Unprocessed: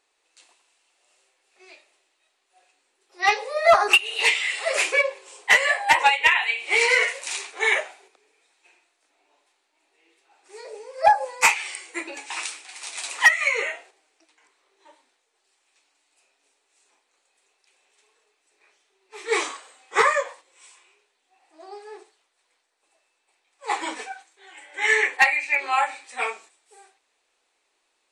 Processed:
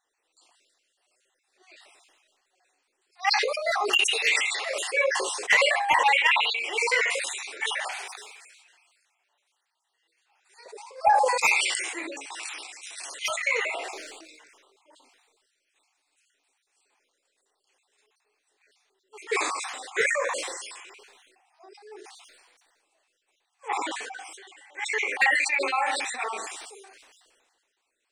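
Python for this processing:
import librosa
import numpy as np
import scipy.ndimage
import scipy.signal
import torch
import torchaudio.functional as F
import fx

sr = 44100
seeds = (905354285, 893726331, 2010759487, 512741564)

y = fx.spec_dropout(x, sr, seeds[0], share_pct=40)
y = fx.highpass(y, sr, hz=1000.0, slope=12, at=(7.6, 10.66))
y = fx.sustainer(y, sr, db_per_s=33.0)
y = y * 10.0 ** (-4.5 / 20.0)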